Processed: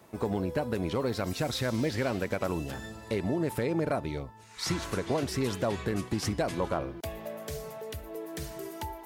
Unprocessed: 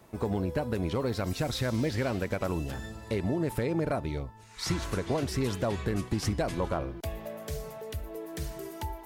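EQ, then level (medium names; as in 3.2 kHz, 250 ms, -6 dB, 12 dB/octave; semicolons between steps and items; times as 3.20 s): high-pass 130 Hz 6 dB/octave; +1.0 dB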